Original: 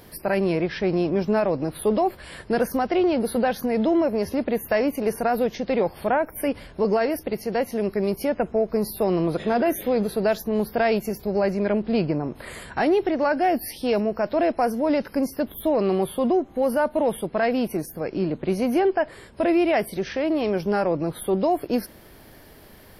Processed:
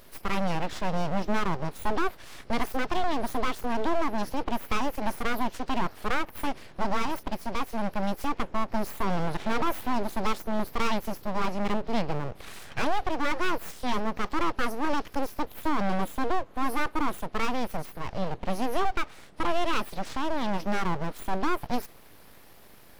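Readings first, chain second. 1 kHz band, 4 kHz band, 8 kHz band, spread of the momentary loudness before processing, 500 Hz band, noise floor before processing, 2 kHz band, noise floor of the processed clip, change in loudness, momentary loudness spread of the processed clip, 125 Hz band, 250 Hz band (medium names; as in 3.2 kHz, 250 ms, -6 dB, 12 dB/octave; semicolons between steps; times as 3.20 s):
-2.0 dB, +0.5 dB, -4.0 dB, 5 LU, -12.0 dB, -48 dBFS, -2.0 dB, -50 dBFS, -7.0 dB, 5 LU, -4.5 dB, -8.0 dB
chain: full-wave rectifier; trim -2.5 dB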